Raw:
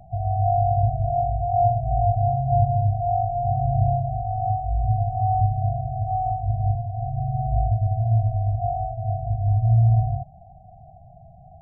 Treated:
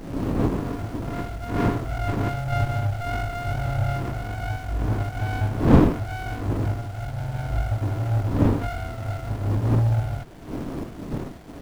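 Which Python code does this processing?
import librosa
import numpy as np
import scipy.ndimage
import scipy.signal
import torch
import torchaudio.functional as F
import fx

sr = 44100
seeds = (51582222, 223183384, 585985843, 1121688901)

y = fx.fade_in_head(x, sr, length_s=2.57)
y = fx.dmg_wind(y, sr, seeds[0], corner_hz=330.0, level_db=-25.0)
y = fx.small_body(y, sr, hz=(290.0, 670.0), ring_ms=45, db=7)
y = fx.dmg_noise_colour(y, sr, seeds[1], colour='pink', level_db=-40.0)
y = fx.running_max(y, sr, window=33)
y = y * librosa.db_to_amplitude(-3.5)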